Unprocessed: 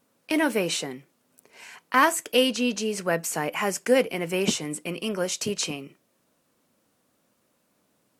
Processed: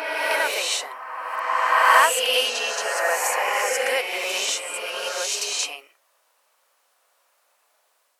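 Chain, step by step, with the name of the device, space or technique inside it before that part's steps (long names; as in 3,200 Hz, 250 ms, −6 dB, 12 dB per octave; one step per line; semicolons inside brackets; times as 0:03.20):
ghost voice (reversed playback; convolution reverb RT60 2.7 s, pre-delay 32 ms, DRR −4 dB; reversed playback; high-pass filter 650 Hz 24 dB per octave)
level +2 dB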